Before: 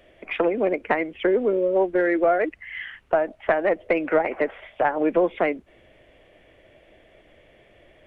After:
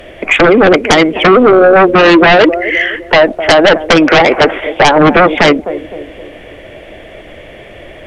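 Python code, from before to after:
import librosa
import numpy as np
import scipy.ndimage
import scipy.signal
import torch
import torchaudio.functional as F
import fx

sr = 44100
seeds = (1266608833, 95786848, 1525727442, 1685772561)

y = fx.echo_banded(x, sr, ms=257, feedback_pct=49, hz=340.0, wet_db=-17)
y = fx.fold_sine(y, sr, drive_db=14, ceiling_db=-5.5)
y = y * librosa.db_to_amplitude(4.0)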